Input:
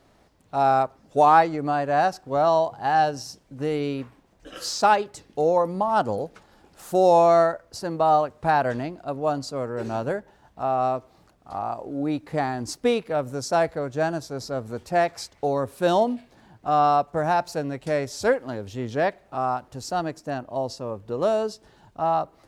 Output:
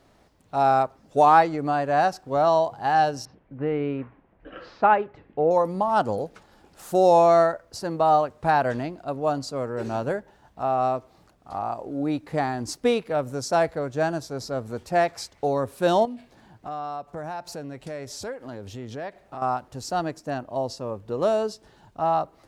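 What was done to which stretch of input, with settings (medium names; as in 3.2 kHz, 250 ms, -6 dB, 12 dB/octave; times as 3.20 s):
3.25–5.51 s: low-pass 2.4 kHz 24 dB/octave
16.05–19.42 s: compression 3:1, threshold -34 dBFS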